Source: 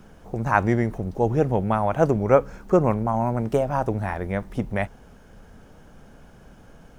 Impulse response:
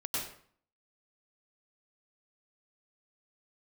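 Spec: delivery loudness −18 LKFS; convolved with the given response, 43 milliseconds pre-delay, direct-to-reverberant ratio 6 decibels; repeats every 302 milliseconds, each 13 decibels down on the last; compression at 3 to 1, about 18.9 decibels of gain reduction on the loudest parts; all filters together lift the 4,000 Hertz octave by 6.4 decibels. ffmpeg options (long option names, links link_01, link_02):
-filter_complex "[0:a]equalizer=frequency=4000:width_type=o:gain=9,acompressor=threshold=-39dB:ratio=3,aecho=1:1:302|604|906:0.224|0.0493|0.0108,asplit=2[link_01][link_02];[1:a]atrim=start_sample=2205,adelay=43[link_03];[link_02][link_03]afir=irnorm=-1:irlink=0,volume=-10dB[link_04];[link_01][link_04]amix=inputs=2:normalize=0,volume=19.5dB"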